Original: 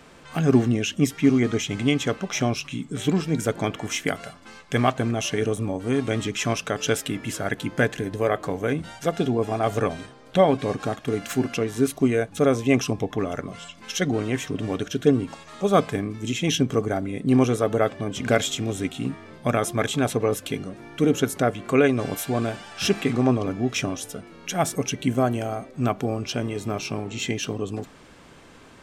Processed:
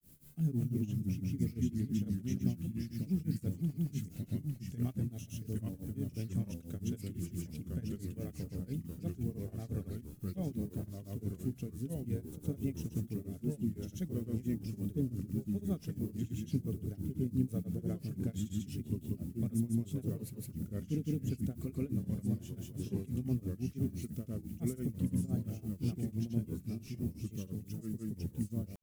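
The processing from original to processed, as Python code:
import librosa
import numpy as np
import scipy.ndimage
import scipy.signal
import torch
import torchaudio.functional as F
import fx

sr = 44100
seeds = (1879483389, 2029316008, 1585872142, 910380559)

y = fx.dmg_noise_colour(x, sr, seeds[0], colour='white', level_db=-46.0)
y = fx.echo_pitch(y, sr, ms=206, semitones=-2, count=3, db_per_echo=-3.0)
y = fx.curve_eq(y, sr, hz=(180.0, 970.0, 5600.0, 8500.0, 12000.0), db=(0, -29, -16, -10, -4))
y = fx.granulator(y, sr, seeds[1], grain_ms=207.0, per_s=5.9, spray_ms=100.0, spread_st=0)
y = F.gain(torch.from_numpy(y), -7.0).numpy()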